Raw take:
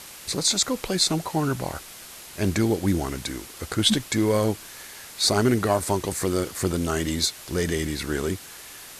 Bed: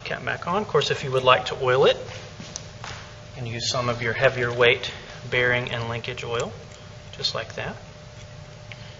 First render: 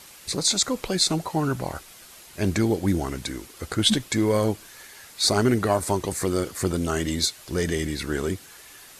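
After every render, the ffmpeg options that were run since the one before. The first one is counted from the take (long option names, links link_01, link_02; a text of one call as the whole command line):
ffmpeg -i in.wav -af "afftdn=noise_reduction=6:noise_floor=-43" out.wav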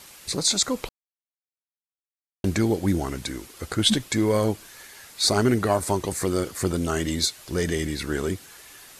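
ffmpeg -i in.wav -filter_complex "[0:a]asplit=3[link_01][link_02][link_03];[link_01]atrim=end=0.89,asetpts=PTS-STARTPTS,afade=type=out:start_time=0.886:duration=0.004:curve=hsin[link_04];[link_02]atrim=start=0.89:end=2.44,asetpts=PTS-STARTPTS,volume=0[link_05];[link_03]atrim=start=2.44,asetpts=PTS-STARTPTS,afade=type=in:duration=0.004:curve=hsin[link_06];[link_04][link_05][link_06]concat=n=3:v=0:a=1" out.wav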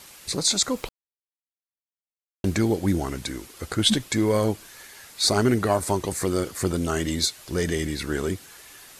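ffmpeg -i in.wav -filter_complex "[0:a]asettb=1/sr,asplit=3[link_01][link_02][link_03];[link_01]atrim=end=0.774[link_04];[link_02]atrim=start=0.77:end=2.7,asetpts=PTS-STARTPTS,afade=type=in:duration=0.004:curve=qsin,afade=type=out:start_time=1.926:duration=0.004:curve=qsin,aeval=exprs='val(0)*gte(abs(val(0)),0.00355)':channel_layout=same[link_05];[link_03]atrim=start=2.696[link_06];[link_04][link_05]acrossfade=duration=0.004:curve1=hsin:curve2=qsin[link_07];[link_07][link_06]acrossfade=duration=0.004:curve1=qsin:curve2=hsin" out.wav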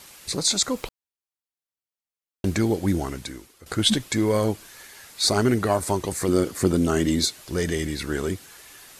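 ffmpeg -i in.wav -filter_complex "[0:a]asettb=1/sr,asplit=3[link_01][link_02][link_03];[link_01]atrim=end=6.284[link_04];[link_02]atrim=start=6.28:end=7.41,asetpts=PTS-STARTPTS,afade=type=in:duration=0.004:curve=qsin,afade=type=out:start_time=1.126:duration=0.004:curve=qsin,equalizer=frequency=260:width_type=o:width=1.7:gain=6.5[link_05];[link_03]atrim=start=7.406[link_06];[link_04][link_05]acrossfade=duration=0.004:curve1=hsin:curve2=qsin[link_07];[link_07][link_06]acrossfade=duration=0.004:curve1=qsin:curve2=hsin,asplit=2[link_08][link_09];[link_08]atrim=end=3.66,asetpts=PTS-STARTPTS,afade=type=out:start_time=3.02:duration=0.64:silence=0.158489[link_10];[link_09]atrim=start=3.66,asetpts=PTS-STARTPTS,afade=type=in:duration=0.004:curve=hsin:silence=0.158489[link_11];[link_10][link_11]concat=n=2:v=0:a=1" out.wav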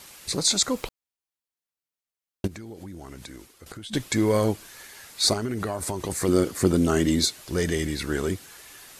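ffmpeg -i in.wav -filter_complex "[0:a]asplit=3[link_01][link_02][link_03];[link_01]afade=type=out:start_time=2.46:duration=0.02[link_04];[link_02]acompressor=threshold=-36dB:ratio=12:attack=3.2:release=140:knee=1:detection=peak,afade=type=in:start_time=2.46:duration=0.02,afade=type=out:start_time=3.93:duration=0.02[link_05];[link_03]afade=type=in:start_time=3.93:duration=0.02[link_06];[link_04][link_05][link_06]amix=inputs=3:normalize=0,asettb=1/sr,asplit=3[link_07][link_08][link_09];[link_07]atrim=end=5.334[link_10];[link_08]atrim=start=5.33:end=6.1,asetpts=PTS-STARTPTS,afade=type=in:duration=0.004:curve=qsin,afade=type=out:start_time=0.766:duration=0.004:curve=qsin,acompressor=threshold=-24dB:ratio=10:attack=3.2:release=140:knee=1:detection=peak[link_11];[link_09]atrim=start=6.096[link_12];[link_10][link_11]acrossfade=duration=0.004:curve1=hsin:curve2=qsin[link_13];[link_13][link_12]acrossfade=duration=0.004:curve1=qsin:curve2=hsin" out.wav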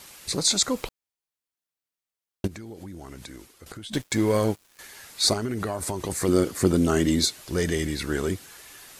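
ffmpeg -i in.wav -filter_complex "[0:a]asettb=1/sr,asplit=3[link_01][link_02][link_03];[link_01]atrim=end=3.924[link_04];[link_02]atrim=start=3.92:end=4.79,asetpts=PTS-STARTPTS,afade=type=in:duration=0.004:curve=qsin,afade=type=out:start_time=0.866:duration=0.004:curve=qsin,aeval=exprs='sgn(val(0))*max(abs(val(0))-0.00794,0)':channel_layout=same[link_05];[link_03]atrim=start=4.786[link_06];[link_04][link_05]acrossfade=duration=0.004:curve1=hsin:curve2=qsin[link_07];[link_07][link_06]acrossfade=duration=0.004:curve1=qsin:curve2=hsin" out.wav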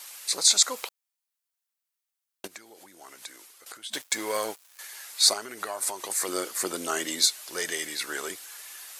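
ffmpeg -i in.wav -af "highpass=720,highshelf=frequency=6100:gain=6" out.wav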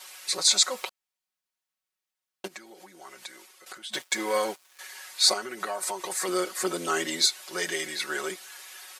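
ffmpeg -i in.wav -af "highshelf=frequency=6900:gain=-10,aecho=1:1:5.4:0.97" out.wav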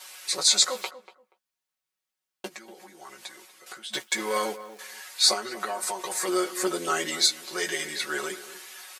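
ffmpeg -i in.wav -filter_complex "[0:a]asplit=2[link_01][link_02];[link_02]adelay=14,volume=-7dB[link_03];[link_01][link_03]amix=inputs=2:normalize=0,asplit=2[link_04][link_05];[link_05]adelay=239,lowpass=frequency=1500:poles=1,volume=-13.5dB,asplit=2[link_06][link_07];[link_07]adelay=239,lowpass=frequency=1500:poles=1,volume=0.2[link_08];[link_04][link_06][link_08]amix=inputs=3:normalize=0" out.wav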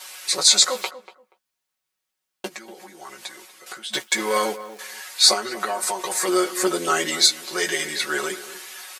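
ffmpeg -i in.wav -af "volume=5.5dB,alimiter=limit=-1dB:level=0:latency=1" out.wav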